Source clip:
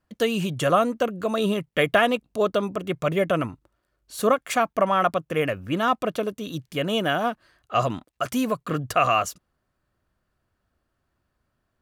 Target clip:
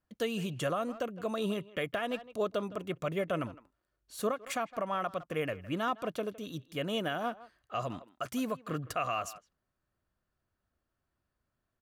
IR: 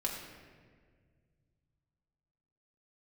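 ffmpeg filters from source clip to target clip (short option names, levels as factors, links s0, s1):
-filter_complex "[0:a]asplit=2[s0][s1];[s1]adelay=160,highpass=300,lowpass=3400,asoftclip=type=hard:threshold=0.2,volume=0.126[s2];[s0][s2]amix=inputs=2:normalize=0,alimiter=limit=0.211:level=0:latency=1:release=215,volume=0.355"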